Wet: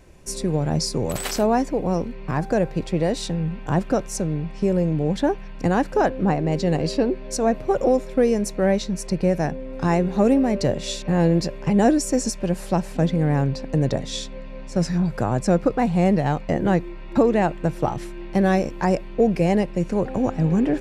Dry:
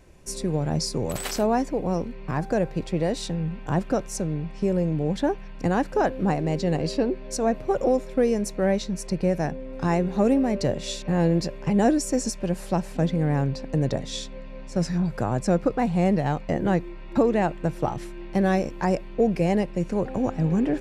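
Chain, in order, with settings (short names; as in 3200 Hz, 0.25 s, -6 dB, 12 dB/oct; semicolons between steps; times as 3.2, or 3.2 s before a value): 6.08–6.51 high shelf 8000 Hz -> 5400 Hz -11.5 dB; gain +3 dB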